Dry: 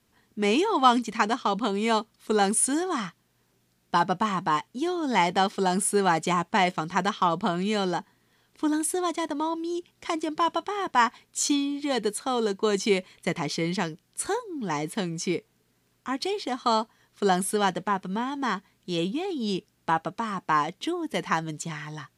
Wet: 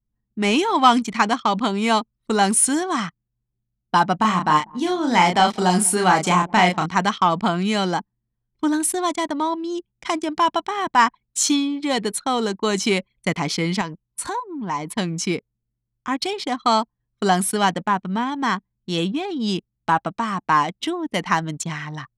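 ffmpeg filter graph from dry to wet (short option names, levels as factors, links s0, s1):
-filter_complex "[0:a]asettb=1/sr,asplit=3[s0][s1][s2];[s0]atrim=end=4.164[s3];[s1]atrim=start=4.16:end=6.86,asetpts=PTS-STARTPTS,afade=t=in:d=0.004:c=qsin,afade=t=out:st=2.696:d=0.004:c=qsin,asplit=2[s4][s5];[s5]adelay=33,volume=0.631[s6];[s4][s6]amix=inputs=2:normalize=0,atrim=end_sample=119070,asplit=2[s7][s8];[s8]adelay=192,lowpass=f=810:p=1,volume=0.0891,asplit=2[s9][s10];[s10]adelay=192,lowpass=f=810:p=1,volume=0.48,asplit=2[s11][s12];[s12]adelay=192,lowpass=f=810:p=1,volume=0.48[s13];[s7][s9][s11][s13]amix=inputs=4:normalize=0,atrim=end_sample=119070[s14];[s2]atrim=start=6.856[s15];[s3][s14]acrossfade=d=0.004:c1=hsin:c2=qsin[s16];[s16][s15]acrossfade=d=0.004:c1=qsin:c2=hsin,asettb=1/sr,asplit=3[s17][s18][s19];[s17]atrim=end=13.814[s20];[s18]atrim=start=13.81:end=14.98,asetpts=PTS-STARTPTS,afade=t=in:d=0.004:c=qsin,afade=t=out:st=1.166:d=0.004:c=qsin,equalizer=f=990:t=o:w=0.21:g=13,acompressor=threshold=0.0224:ratio=2:attack=3.2:release=140:knee=1:detection=peak[s21];[s19]atrim=start=14.976[s22];[s20][s21]acrossfade=d=0.004:c1=hsin:c2=qsin[s23];[s23][s22]acrossfade=d=0.004:c1=qsin:c2=hsin,anlmdn=0.251,acontrast=73,equalizer=f=420:t=o:w=0.62:g=-6"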